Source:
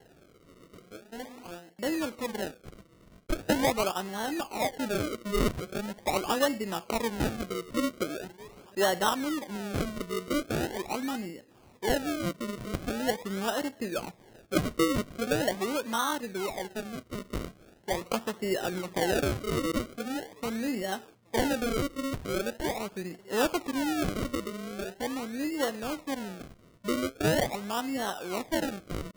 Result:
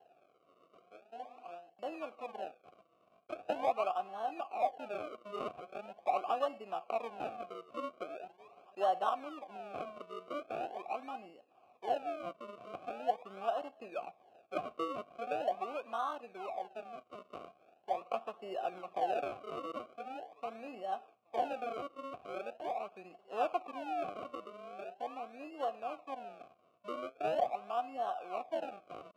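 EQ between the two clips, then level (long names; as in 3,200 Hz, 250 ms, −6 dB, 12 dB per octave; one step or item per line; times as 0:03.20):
dynamic equaliser 5,500 Hz, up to −4 dB, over −48 dBFS, Q 0.76
formant filter a
high-pass filter 67 Hz
+3.5 dB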